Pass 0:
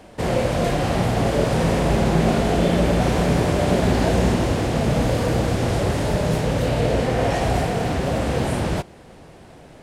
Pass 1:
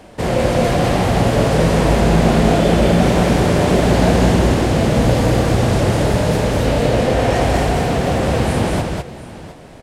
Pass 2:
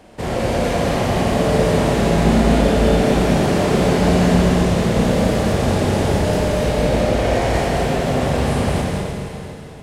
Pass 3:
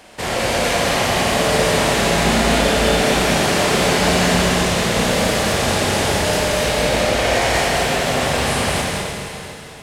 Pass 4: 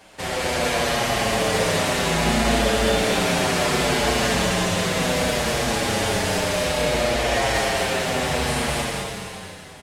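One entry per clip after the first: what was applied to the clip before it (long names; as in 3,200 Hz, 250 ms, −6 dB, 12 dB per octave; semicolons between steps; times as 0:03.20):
multi-tap delay 201/709 ms −3/−16 dB; level +3.5 dB
four-comb reverb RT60 2.5 s, combs from 28 ms, DRR −0.5 dB; level −5 dB
tilt shelving filter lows −7.5 dB, about 770 Hz; level +2 dB
barber-pole flanger 7.2 ms −0.64 Hz; level −1.5 dB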